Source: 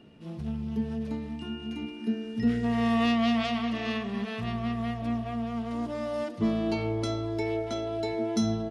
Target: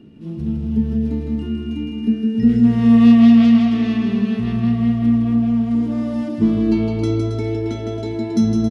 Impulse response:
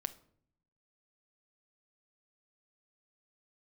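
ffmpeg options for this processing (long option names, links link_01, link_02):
-af "lowshelf=frequency=440:width_type=q:width=1.5:gain=9,aecho=1:1:160|272|350.4|405.3|443.7:0.631|0.398|0.251|0.158|0.1"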